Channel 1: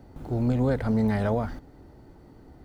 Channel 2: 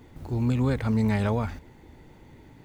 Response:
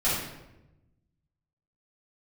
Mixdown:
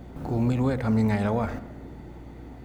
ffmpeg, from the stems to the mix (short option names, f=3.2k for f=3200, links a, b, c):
-filter_complex "[0:a]lowpass=2.8k,acompressor=threshold=-32dB:ratio=6,highpass=160,volume=2.5dB,asplit=2[a][b];[b]volume=-13.5dB[c];[1:a]aeval=exprs='val(0)+0.00631*(sin(2*PI*60*n/s)+sin(2*PI*2*60*n/s)/2+sin(2*PI*3*60*n/s)/3+sin(2*PI*4*60*n/s)/4+sin(2*PI*5*60*n/s)/5)':c=same,volume=0.5dB[d];[2:a]atrim=start_sample=2205[e];[c][e]afir=irnorm=-1:irlink=0[f];[a][d][f]amix=inputs=3:normalize=0,alimiter=limit=-15dB:level=0:latency=1:release=310"